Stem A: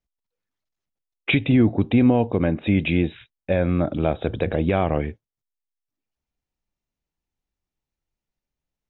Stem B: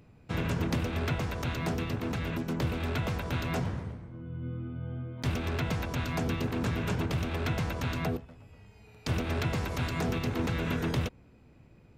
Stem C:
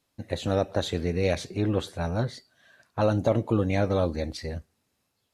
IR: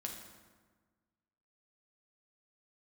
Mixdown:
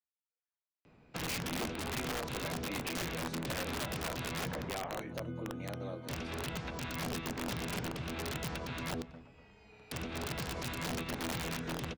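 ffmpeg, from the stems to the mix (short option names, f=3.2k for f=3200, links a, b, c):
-filter_complex "[0:a]flanger=delay=16.5:depth=2.3:speed=0.7,bandpass=f=1.4k:t=q:w=0.74:csg=0,volume=-8dB[a];[1:a]lowpass=5.3k,acrossover=split=280|3000[b][c][d];[c]acompressor=threshold=-38dB:ratio=10[e];[b][e][d]amix=inputs=3:normalize=0,adelay=850,volume=0.5dB,asplit=2[f][g];[g]volume=-23.5dB[h];[2:a]highpass=f=130:w=0.5412,highpass=f=130:w=1.3066,adelay=1900,volume=-17.5dB,asplit=2[i][j];[j]volume=-14.5dB[k];[f][i]amix=inputs=2:normalize=0,lowshelf=f=190:g=-8.5,alimiter=level_in=3dB:limit=-24dB:level=0:latency=1:release=272,volume=-3dB,volume=0dB[l];[h][k]amix=inputs=2:normalize=0,aecho=0:1:211:1[m];[a][l][m]amix=inputs=3:normalize=0,equalizer=f=99:w=5.3:g=-12.5,acrossover=split=360|3000[n][o][p];[o]acompressor=threshold=-36dB:ratio=8[q];[n][q][p]amix=inputs=3:normalize=0,aeval=exprs='(mod(31.6*val(0)+1,2)-1)/31.6':c=same"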